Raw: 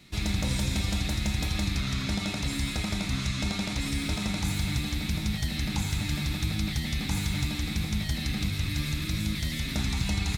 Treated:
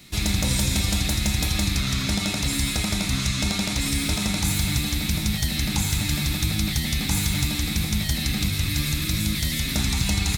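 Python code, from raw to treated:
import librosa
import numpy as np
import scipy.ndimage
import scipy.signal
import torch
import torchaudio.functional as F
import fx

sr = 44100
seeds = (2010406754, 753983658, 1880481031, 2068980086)

y = fx.high_shelf(x, sr, hz=6300.0, db=11.0)
y = y * librosa.db_to_amplitude(4.5)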